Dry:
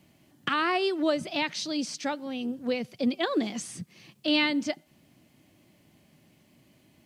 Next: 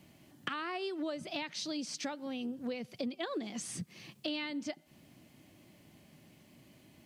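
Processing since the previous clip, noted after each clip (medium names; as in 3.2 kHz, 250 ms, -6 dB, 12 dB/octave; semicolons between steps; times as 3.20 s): compression 5:1, threshold -37 dBFS, peak gain reduction 15.5 dB; trim +1 dB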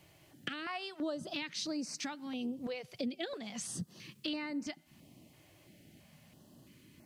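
step-sequenced notch 3 Hz 230–3300 Hz; trim +1 dB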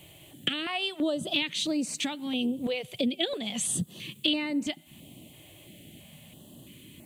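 FFT filter 580 Hz 0 dB, 1.5 kHz -8 dB, 3.4 kHz +8 dB, 5.2 kHz -12 dB, 7.7 kHz +5 dB; trim +9 dB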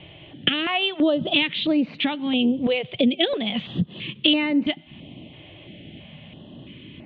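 steep low-pass 3.5 kHz 48 dB/octave; trim +8.5 dB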